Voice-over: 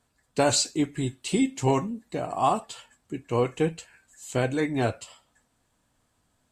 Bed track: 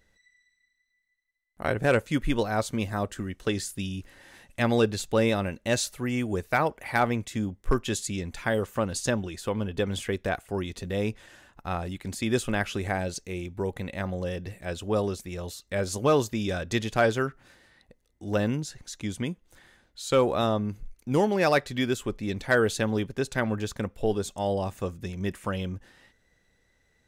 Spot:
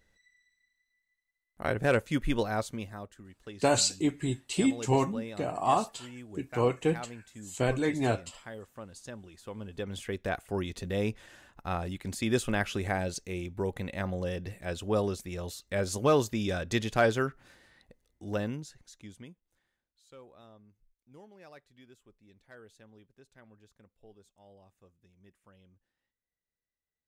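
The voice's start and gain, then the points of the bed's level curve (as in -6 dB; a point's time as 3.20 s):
3.25 s, -2.5 dB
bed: 2.51 s -3 dB
3.18 s -17.5 dB
9.11 s -17.5 dB
10.46 s -2 dB
18.06 s -2 dB
20.17 s -30 dB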